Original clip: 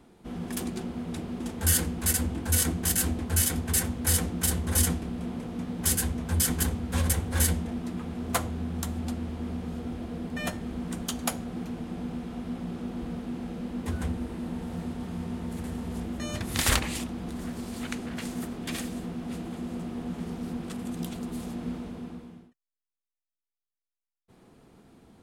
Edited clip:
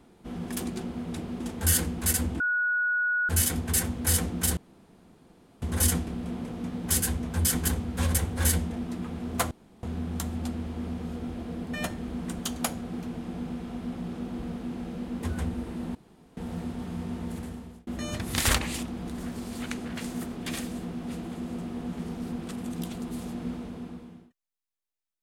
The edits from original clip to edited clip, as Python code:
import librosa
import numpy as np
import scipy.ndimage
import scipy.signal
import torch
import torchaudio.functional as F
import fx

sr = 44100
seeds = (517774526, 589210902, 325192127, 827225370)

y = fx.edit(x, sr, fx.bleep(start_s=2.4, length_s=0.89, hz=1460.0, db=-23.0),
    fx.insert_room_tone(at_s=4.57, length_s=1.05),
    fx.insert_room_tone(at_s=8.46, length_s=0.32),
    fx.insert_room_tone(at_s=14.58, length_s=0.42),
    fx.fade_out_span(start_s=15.52, length_s=0.56), tone=tone)